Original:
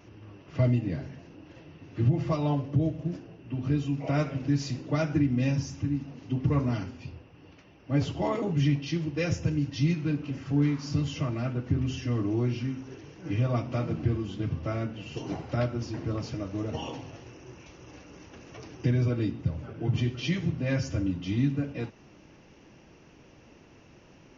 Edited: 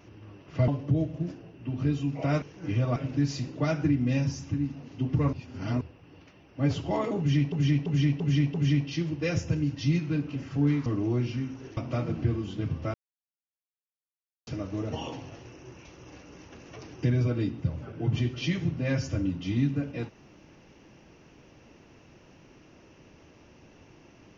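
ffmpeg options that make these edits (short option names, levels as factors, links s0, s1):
-filter_complex "[0:a]asplit=14[s0][s1][s2][s3][s4][s5][s6][s7][s8][s9][s10][s11][s12][s13];[s0]atrim=end=0.682[s14];[s1]atrim=start=2.528:end=4.272[s15];[s2]atrim=start=13.038:end=13.582[s16];[s3]atrim=start=4.268:end=6.642[s17];[s4]atrim=start=6.638:end=7.122,asetpts=PTS-STARTPTS,areverse[s18];[s5]atrim=start=7.118:end=8.832[s19];[s6]atrim=start=8.488:end=8.832[s20];[s7]atrim=start=8.488:end=8.832[s21];[s8]atrim=start=8.488:end=8.832[s22];[s9]atrim=start=8.488:end=10.812[s23];[s10]atrim=start=12.128:end=13.042[s24];[s11]atrim=start=13.578:end=14.75,asetpts=PTS-STARTPTS,afade=t=out:st=1.168:d=0.004:c=hsin[s25];[s12]atrim=start=14.75:end=16.28,asetpts=PTS-STARTPTS,volume=0[s26];[s13]atrim=start=16.28,asetpts=PTS-STARTPTS,afade=t=in:d=0.004:c=hsin[s27];[s14][s15]acrossfade=d=0.004:c1=hsin:c2=hsin[s28];[s28][s16]acrossfade=d=0.004:c1=hsin:c2=hsin[s29];[s29][s17]acrossfade=d=0.004:c1=hsin:c2=hsin[s30];[s30][s18]acrossfade=d=0.004:c1=hsin:c2=hsin[s31];[s31][s19]acrossfade=d=0.004:c1=hsin:c2=hsin[s32];[s32][s20]acrossfade=d=0.004:c1=hsin:c2=hsin[s33];[s33][s21]acrossfade=d=0.004:c1=hsin:c2=hsin[s34];[s34][s22]acrossfade=d=0.004:c1=hsin:c2=hsin[s35];[s35][s23]acrossfade=d=0.004:c1=hsin:c2=hsin[s36];[s36][s24]acrossfade=d=0.004:c1=hsin:c2=hsin[s37];[s25][s26][s27]concat=n=3:v=0:a=1[s38];[s37][s38]acrossfade=d=0.004:c1=hsin:c2=hsin"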